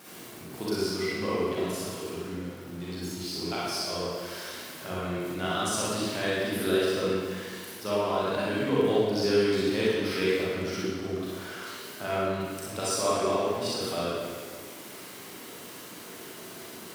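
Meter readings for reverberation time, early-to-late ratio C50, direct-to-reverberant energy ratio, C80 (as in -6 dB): 1.7 s, -5.0 dB, -8.5 dB, -1.5 dB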